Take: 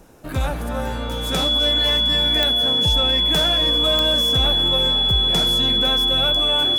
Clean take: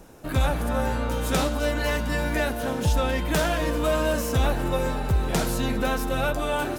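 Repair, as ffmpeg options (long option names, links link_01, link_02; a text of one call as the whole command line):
ffmpeg -i in.wav -af "adeclick=threshold=4,bandreject=frequency=3400:width=30" out.wav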